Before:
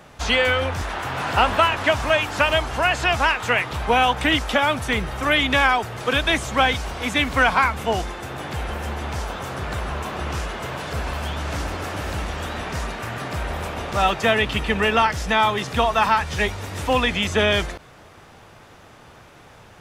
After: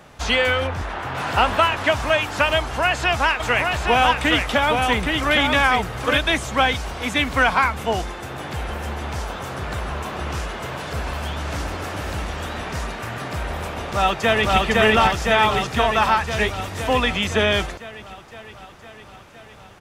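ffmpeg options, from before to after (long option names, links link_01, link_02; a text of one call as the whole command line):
ffmpeg -i in.wav -filter_complex "[0:a]asettb=1/sr,asplit=3[link_01][link_02][link_03];[link_01]atrim=end=0.674[link_04];[link_02]atrim=start=0.67:end=1.15,asetpts=PTS-STARTPTS,afade=type=in:duration=0.004:curve=qsin,afade=type=out:start_time=0.476:duration=0.004:curve=qsin,highshelf=frequency=4400:gain=-10.5[link_05];[link_03]atrim=start=1.146[link_06];[link_04][link_05]acrossfade=duration=0.004:curve1=hsin:curve2=qsin[link_07];[link_07][link_06]acrossfade=duration=0.004:curve1=qsin:curve2=hsin,asplit=3[link_08][link_09][link_10];[link_08]afade=type=out:start_time=3.39:duration=0.02[link_11];[link_09]aecho=1:1:818:0.631,afade=type=in:start_time=3.39:duration=0.02,afade=type=out:start_time=6.17:duration=0.02[link_12];[link_10]afade=type=in:start_time=6.17:duration=0.02[link_13];[link_11][link_12][link_13]amix=inputs=3:normalize=0,asplit=2[link_14][link_15];[link_15]afade=type=in:start_time=13.77:duration=0.01,afade=type=out:start_time=14.56:duration=0.01,aecho=0:1:510|1020|1530|2040|2550|3060|3570|4080|4590|5100|5610|6120:1|0.7|0.49|0.343|0.2401|0.16807|0.117649|0.0823543|0.057648|0.0403536|0.0282475|0.0197733[link_16];[link_14][link_16]amix=inputs=2:normalize=0" out.wav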